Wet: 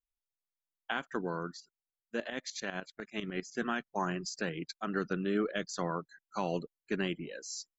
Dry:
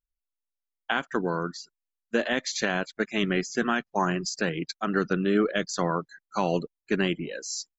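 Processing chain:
0:01.60–0:03.60: shaped tremolo saw up 10 Hz, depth 80%
level −8 dB

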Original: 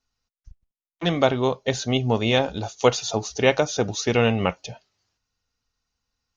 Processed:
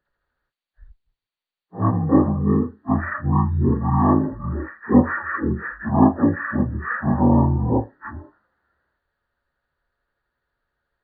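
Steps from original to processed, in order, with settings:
partials spread apart or drawn together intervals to 78%
wrong playback speed 78 rpm record played at 45 rpm
level +4 dB

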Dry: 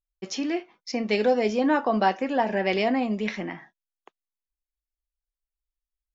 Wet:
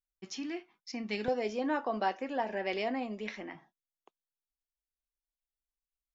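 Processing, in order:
parametric band 540 Hz −12 dB 0.6 octaves, from 0:01.28 160 Hz, from 0:03.55 1,800 Hz
level −9 dB

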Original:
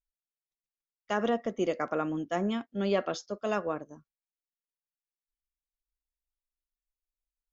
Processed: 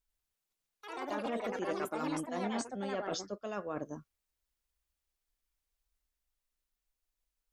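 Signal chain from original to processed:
reversed playback
downward compressor 10 to 1, threshold −41 dBFS, peak gain reduction 18.5 dB
reversed playback
delay with pitch and tempo change per echo 94 ms, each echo +4 semitones, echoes 3
level +6 dB

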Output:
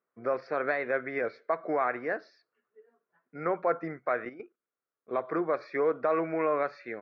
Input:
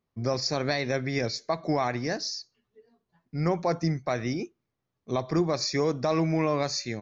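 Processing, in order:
pitch vibrato 0.67 Hz 14 cents
loudspeaker in its box 440–2,100 Hz, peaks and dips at 470 Hz +4 dB, 850 Hz −5 dB, 1,400 Hz +9 dB
0:04.25–0:05.13: output level in coarse steps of 12 dB

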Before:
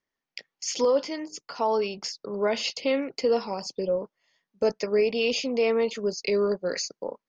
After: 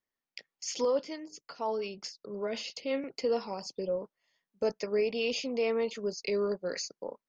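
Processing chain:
0:00.99–0:03.04: rotating-speaker cabinet horn 5.5 Hz
level −6 dB

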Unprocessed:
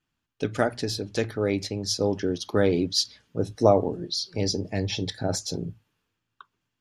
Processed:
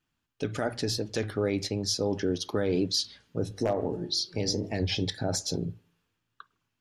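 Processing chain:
wave folding −7.5 dBFS
on a send at −23.5 dB: convolution reverb, pre-delay 52 ms
on the sum: brickwall limiter −17.5 dBFS, peak gain reduction 10 dB
0:03.44–0:04.83: hum removal 48.98 Hz, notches 40
wow of a warped record 33 1/3 rpm, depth 100 cents

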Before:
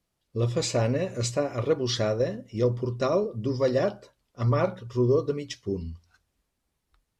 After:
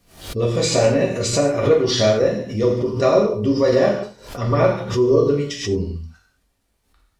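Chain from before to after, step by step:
reverb whose tail is shaped and stops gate 240 ms falling, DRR −3 dB
background raised ahead of every attack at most 110 dB per second
level +4 dB

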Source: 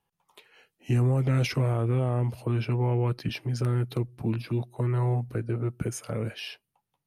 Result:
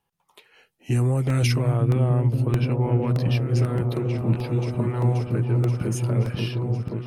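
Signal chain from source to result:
0:00.91–0:01.55: parametric band 8,900 Hz +9 dB 1.1 octaves
echo whose low-pass opens from repeat to repeat 530 ms, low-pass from 200 Hz, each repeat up 1 octave, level 0 dB
regular buffer underruns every 0.62 s, samples 64, repeat, from 0:00.68
level +2 dB

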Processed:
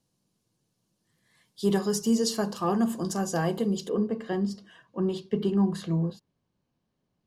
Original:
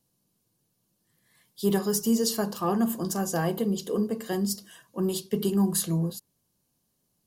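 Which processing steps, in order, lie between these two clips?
low-pass filter 7,900 Hz 12 dB per octave, from 0:03.89 2,800 Hz

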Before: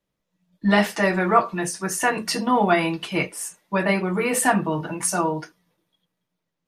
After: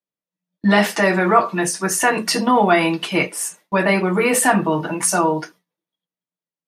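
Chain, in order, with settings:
high-pass filter 170 Hz 12 dB per octave
in parallel at +1 dB: brickwall limiter −15.5 dBFS, peak gain reduction 10.5 dB
on the sum: noise gate with hold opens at −35 dBFS

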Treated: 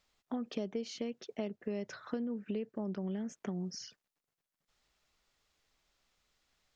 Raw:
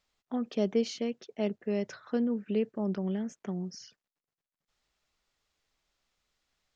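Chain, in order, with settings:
downward compressor 6 to 1, threshold −37 dBFS, peak gain reduction 14 dB
level +2.5 dB

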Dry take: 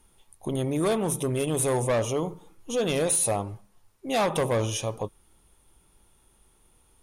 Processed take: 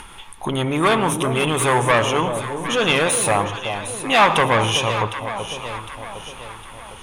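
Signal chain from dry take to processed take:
in parallel at 0 dB: upward compression, threshold −29 dBFS
on the sum: low-pass filter 11,000 Hz 12 dB per octave
delay that swaps between a low-pass and a high-pass 379 ms, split 890 Hz, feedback 67%, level −8 dB
soft clipping −13 dBFS, distortion −20 dB
flat-topped bell 1,700 Hz +11.5 dB 2.3 octaves
on a send at −16 dB: convolution reverb, pre-delay 97 ms

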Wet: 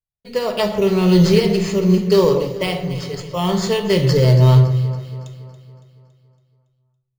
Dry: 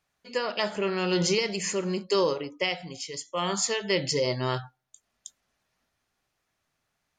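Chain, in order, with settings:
RIAA equalisation playback
downward expander −51 dBFS
graphic EQ with 15 bands 100 Hz +6 dB, 250 Hz −9 dB, 1,600 Hz −9 dB, 4,000 Hz +10 dB
in parallel at −7 dB: sample-rate reduction 6,300 Hz, jitter 0%
on the sum: delay that swaps between a low-pass and a high-pass 140 ms, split 1,900 Hz, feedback 71%, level −11 dB
on a send at −5.5 dB: convolution reverb RT60 0.60 s, pre-delay 5 ms
on the sum: level +4 dB

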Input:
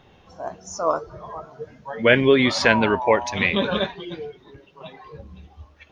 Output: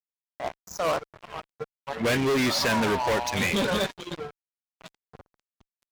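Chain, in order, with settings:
fuzz pedal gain 25 dB, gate −34 dBFS
level −8 dB

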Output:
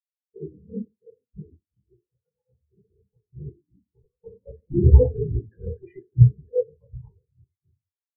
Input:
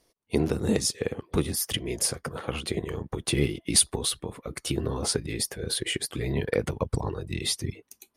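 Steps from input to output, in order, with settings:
0:04.03–0:06.22: leveller curve on the samples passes 3
high-shelf EQ 2,500 Hz −9 dB
auto-filter low-pass square 8.2 Hz 900–2,000 Hz
convolution reverb RT60 0.70 s, pre-delay 4 ms, DRR −2.5 dB
every bin expanded away from the loudest bin 4 to 1
level −2 dB

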